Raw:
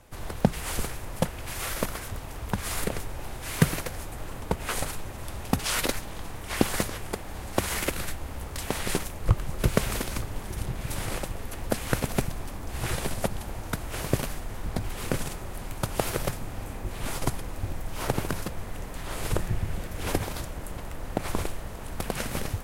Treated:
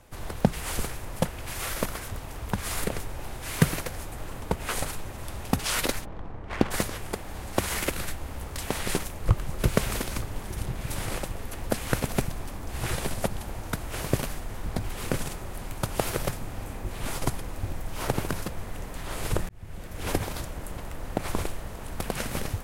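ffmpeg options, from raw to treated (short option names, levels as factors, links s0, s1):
-filter_complex "[0:a]asplit=3[s0][s1][s2];[s0]afade=t=out:st=6.04:d=0.02[s3];[s1]adynamicsmooth=sensitivity=3:basefreq=1000,afade=t=in:st=6.04:d=0.02,afade=t=out:st=6.7:d=0.02[s4];[s2]afade=t=in:st=6.7:d=0.02[s5];[s3][s4][s5]amix=inputs=3:normalize=0,asplit=2[s6][s7];[s6]atrim=end=19.49,asetpts=PTS-STARTPTS,afade=t=out:st=19.486:d=0.004:c=hsin[s8];[s7]atrim=start=19.49,asetpts=PTS-STARTPTS,afade=t=in:d=0.62[s9];[s8][s9]concat=n=2:v=0:a=1"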